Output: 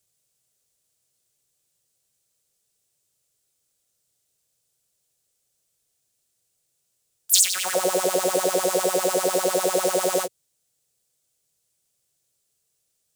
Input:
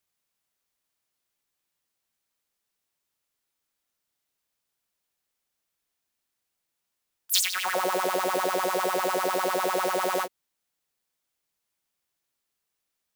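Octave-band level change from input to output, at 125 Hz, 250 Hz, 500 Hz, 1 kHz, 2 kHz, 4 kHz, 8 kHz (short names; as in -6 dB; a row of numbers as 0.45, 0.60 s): +6.0, +4.5, +6.0, -1.5, -2.0, +3.5, +10.0 dB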